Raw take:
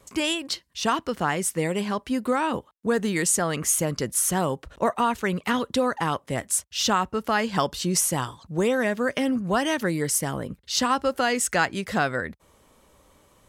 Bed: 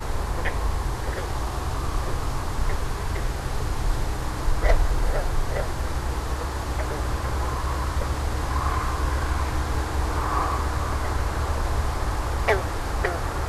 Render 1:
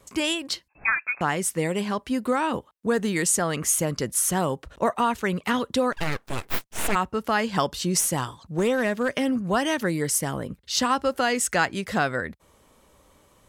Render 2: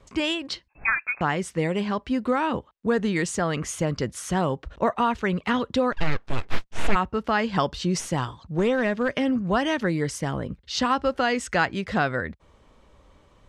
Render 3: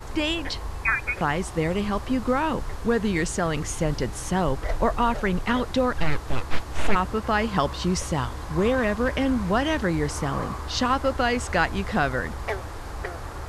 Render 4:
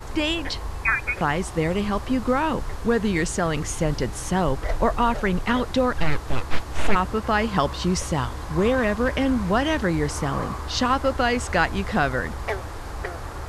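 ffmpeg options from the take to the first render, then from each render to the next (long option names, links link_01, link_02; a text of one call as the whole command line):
ffmpeg -i in.wav -filter_complex "[0:a]asettb=1/sr,asplit=3[link_01][link_02][link_03];[link_01]atrim=end=0.684[link_04];[link_02]atrim=start=0.68:end=1.21,asetpts=PTS-STARTPTS,afade=type=in:duration=0.004:curve=qsin,afade=type=out:start_time=0.526:duration=0.004:curve=qsin,lowpass=frequency=2300:width_type=q:width=0.5098,lowpass=frequency=2300:width_type=q:width=0.6013,lowpass=frequency=2300:width_type=q:width=0.9,lowpass=frequency=2300:width_type=q:width=2.563,afreqshift=-2700[link_05];[link_03]atrim=start=1.206[link_06];[link_04][link_05]acrossfade=duration=0.004:curve1=hsin:curve2=qsin[link_07];[link_07][link_06]acrossfade=duration=0.004:curve1=qsin:curve2=hsin,asplit=3[link_08][link_09][link_10];[link_08]afade=type=out:start_time=5.92:duration=0.02[link_11];[link_09]aeval=exprs='abs(val(0))':channel_layout=same,afade=type=in:start_time=5.92:duration=0.02,afade=type=out:start_time=6.94:duration=0.02[link_12];[link_10]afade=type=in:start_time=6.94:duration=0.02[link_13];[link_11][link_12][link_13]amix=inputs=3:normalize=0,asplit=3[link_14][link_15][link_16];[link_14]afade=type=out:start_time=7.99:duration=0.02[link_17];[link_15]aeval=exprs='clip(val(0),-1,0.106)':channel_layout=same,afade=type=in:start_time=7.99:duration=0.02,afade=type=out:start_time=9.08:duration=0.02[link_18];[link_16]afade=type=in:start_time=9.08:duration=0.02[link_19];[link_17][link_18][link_19]amix=inputs=3:normalize=0" out.wav
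ffmpeg -i in.wav -af "lowpass=4500,lowshelf=frequency=77:gain=10.5" out.wav
ffmpeg -i in.wav -i bed.wav -filter_complex "[1:a]volume=-8dB[link_01];[0:a][link_01]amix=inputs=2:normalize=0" out.wav
ffmpeg -i in.wav -af "volume=1.5dB" out.wav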